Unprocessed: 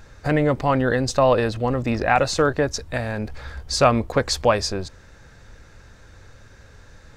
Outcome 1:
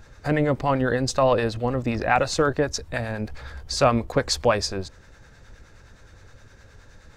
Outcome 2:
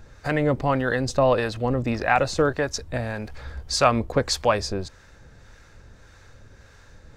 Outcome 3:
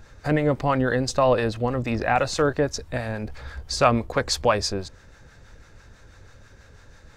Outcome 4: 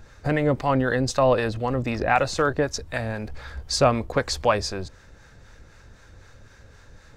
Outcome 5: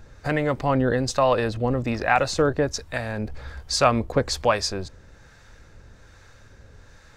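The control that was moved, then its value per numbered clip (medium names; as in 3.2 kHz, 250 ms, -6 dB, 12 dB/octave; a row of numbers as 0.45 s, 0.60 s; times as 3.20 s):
harmonic tremolo, rate: 9.6 Hz, 1.7 Hz, 6.1 Hz, 3.9 Hz, 1.2 Hz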